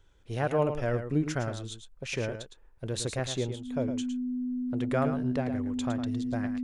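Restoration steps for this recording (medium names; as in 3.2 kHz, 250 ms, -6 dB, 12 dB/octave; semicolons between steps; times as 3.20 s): band-stop 250 Hz, Q 30; inverse comb 110 ms -9 dB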